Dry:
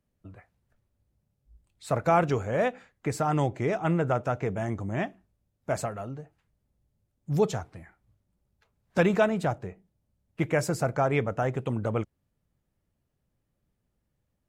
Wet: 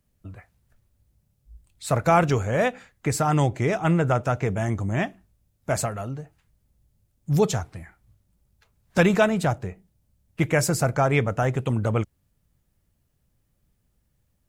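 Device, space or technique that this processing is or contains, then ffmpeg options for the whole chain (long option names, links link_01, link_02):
smiley-face EQ: -af "lowshelf=frequency=110:gain=4.5,equalizer=frequency=440:width_type=o:width=2.8:gain=-3.5,highshelf=frequency=5600:gain=6.5,volume=6dB"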